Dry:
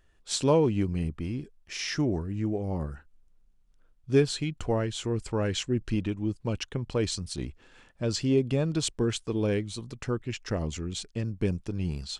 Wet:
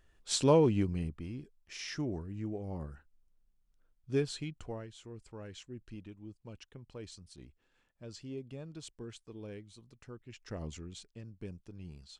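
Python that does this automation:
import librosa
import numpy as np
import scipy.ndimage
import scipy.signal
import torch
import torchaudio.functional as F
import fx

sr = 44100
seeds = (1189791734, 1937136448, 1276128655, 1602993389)

y = fx.gain(x, sr, db=fx.line((0.72, -2.0), (1.24, -9.0), (4.47, -9.0), (4.93, -18.5), (10.2, -18.5), (10.67, -9.0), (11.2, -16.5)))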